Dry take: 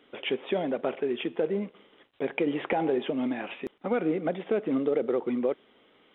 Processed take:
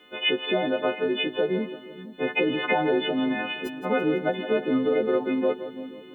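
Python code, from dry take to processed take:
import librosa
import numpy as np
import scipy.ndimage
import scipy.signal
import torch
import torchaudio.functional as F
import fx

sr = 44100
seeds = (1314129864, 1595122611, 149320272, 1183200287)

y = fx.freq_snap(x, sr, grid_st=3)
y = fx.echo_split(y, sr, split_hz=320.0, low_ms=470, high_ms=167, feedback_pct=52, wet_db=-12)
y = F.gain(torch.from_numpy(y), 3.5).numpy()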